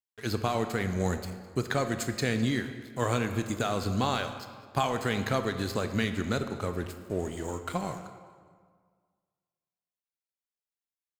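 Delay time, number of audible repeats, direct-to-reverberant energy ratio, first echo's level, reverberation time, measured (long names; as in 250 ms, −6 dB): 207 ms, 2, 8.0 dB, −20.5 dB, 1.8 s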